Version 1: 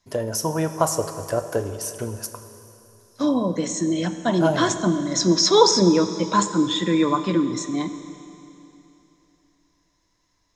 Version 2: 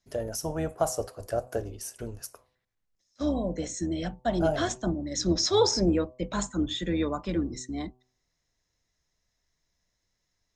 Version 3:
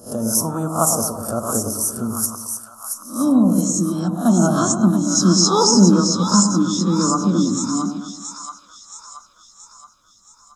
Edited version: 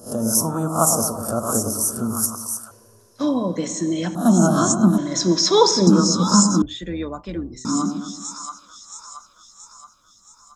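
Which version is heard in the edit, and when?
3
2.71–4.15 s: from 1
4.98–5.87 s: from 1
6.62–7.65 s: from 2

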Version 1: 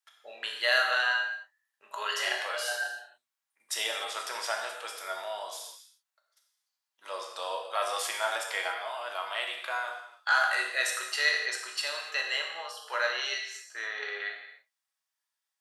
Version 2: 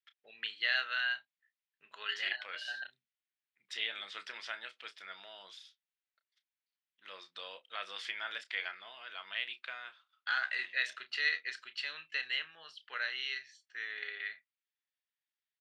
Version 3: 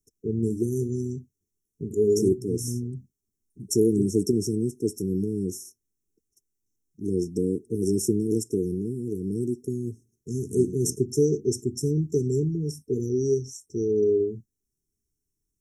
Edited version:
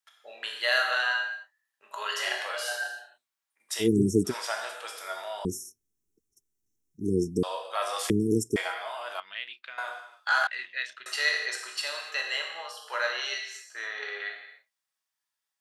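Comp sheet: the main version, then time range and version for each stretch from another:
1
3.84–4.29 s: from 3, crossfade 0.10 s
5.45–7.43 s: from 3
8.10–8.56 s: from 3
9.20–9.78 s: from 2
10.47–11.06 s: from 2

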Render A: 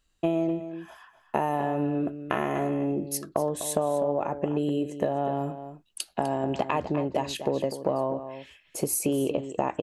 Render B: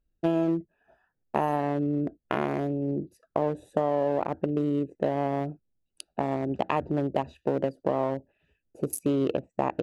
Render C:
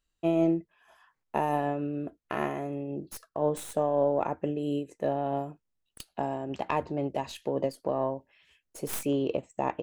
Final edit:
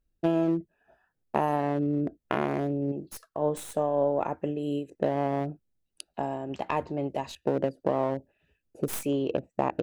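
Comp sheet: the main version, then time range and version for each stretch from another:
B
2.92–4.90 s: from C
6.14–7.35 s: from C
8.88–9.31 s: from C
not used: A

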